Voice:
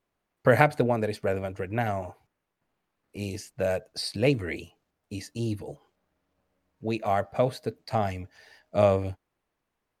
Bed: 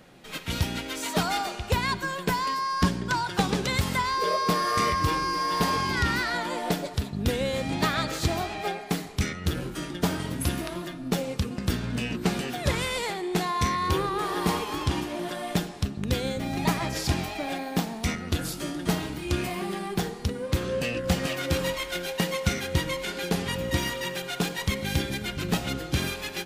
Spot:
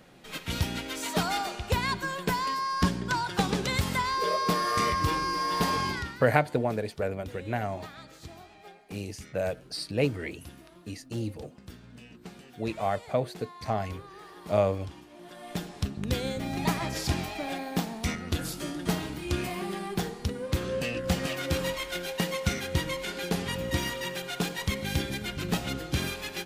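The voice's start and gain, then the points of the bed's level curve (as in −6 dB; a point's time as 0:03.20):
5.75 s, −3.0 dB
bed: 0:05.88 −2 dB
0:06.20 −19.5 dB
0:15.06 −19.5 dB
0:15.79 −2.5 dB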